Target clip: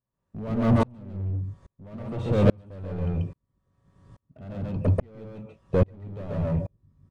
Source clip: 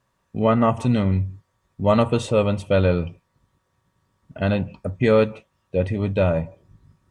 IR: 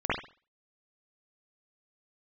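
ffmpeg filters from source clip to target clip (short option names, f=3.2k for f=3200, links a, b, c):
-filter_complex "[0:a]acrossover=split=3500[a][b];[b]acompressor=threshold=-54dB:ratio=4:attack=1:release=60[c];[a][c]amix=inputs=2:normalize=0,aresample=22050,aresample=44100,asplit=2[d][e];[e]acompressor=threshold=-30dB:ratio=6,volume=0dB[f];[d][f]amix=inputs=2:normalize=0,alimiter=limit=-14.5dB:level=0:latency=1:release=13,asoftclip=type=hard:threshold=-25dB,tiltshelf=f=720:g=7,asplit=2[g][h];[h]aecho=0:1:137:0.708[i];[g][i]amix=inputs=2:normalize=0,aeval=exprs='val(0)*pow(10,-37*if(lt(mod(-1.2*n/s,1),2*abs(-1.2)/1000),1-mod(-1.2*n/s,1)/(2*abs(-1.2)/1000),(mod(-1.2*n/s,1)-2*abs(-1.2)/1000)/(1-2*abs(-1.2)/1000))/20)':c=same,volume=6.5dB"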